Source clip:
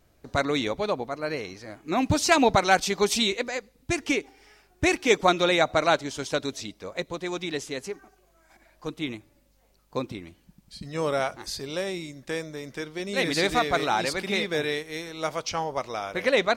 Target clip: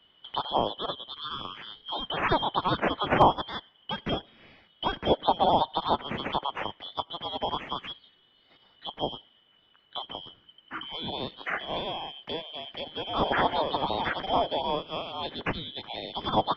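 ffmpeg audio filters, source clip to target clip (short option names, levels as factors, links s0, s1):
-filter_complex "[0:a]afftfilt=real='real(if(lt(b,272),68*(eq(floor(b/68),0)*2+eq(floor(b/68),1)*3+eq(floor(b/68),2)*0+eq(floor(b/68),3)*1)+mod(b,68),b),0)':imag='imag(if(lt(b,272),68*(eq(floor(b/68),0)*2+eq(floor(b/68),1)*3+eq(floor(b/68),2)*0+eq(floor(b/68),3)*1)+mod(b,68),b),0)':win_size=2048:overlap=0.75,lowpass=f=2500:w=0.5412,lowpass=f=2500:w=1.3066,equalizer=f=230:t=o:w=2.3:g=6,acrossover=split=110|450|1700[s0][s1][s2][s3];[s3]acompressor=threshold=0.00631:ratio=12[s4];[s0][s1][s2][s4]amix=inputs=4:normalize=0,asoftclip=type=hard:threshold=0.188,volume=2.37"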